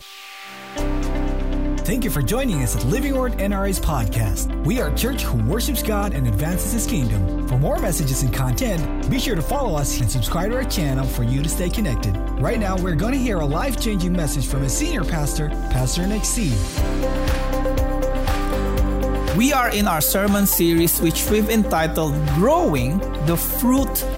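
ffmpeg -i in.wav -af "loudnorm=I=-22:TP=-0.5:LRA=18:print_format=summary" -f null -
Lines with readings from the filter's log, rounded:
Input Integrated:    -20.6 LUFS
Input True Peak:      -6.1 dBTP
Input LRA:             4.4 LU
Input Threshold:     -30.6 LUFS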